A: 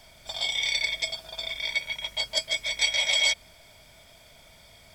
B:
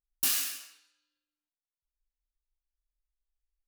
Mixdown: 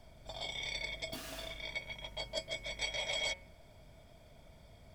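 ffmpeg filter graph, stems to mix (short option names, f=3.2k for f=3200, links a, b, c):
-filter_complex "[0:a]bandreject=f=184.3:t=h:w=4,bandreject=f=368.6:t=h:w=4,bandreject=f=552.9:t=h:w=4,bandreject=f=737.2:t=h:w=4,bandreject=f=921.5:t=h:w=4,bandreject=f=1.1058k:t=h:w=4,bandreject=f=1.2901k:t=h:w=4,bandreject=f=1.4744k:t=h:w=4,bandreject=f=1.6587k:t=h:w=4,bandreject=f=1.843k:t=h:w=4,bandreject=f=2.0273k:t=h:w=4,bandreject=f=2.2116k:t=h:w=4,bandreject=f=2.3959k:t=h:w=4,bandreject=f=2.5802k:t=h:w=4,bandreject=f=2.7645k:t=h:w=4,bandreject=f=2.9488k:t=h:w=4,bandreject=f=3.1331k:t=h:w=4,volume=-7dB[a];[1:a]lowpass=f=3.3k:p=1,alimiter=level_in=8dB:limit=-24dB:level=0:latency=1:release=78,volume=-8dB,adelay=900,volume=0.5dB[b];[a][b]amix=inputs=2:normalize=0,tiltshelf=f=970:g=8.5"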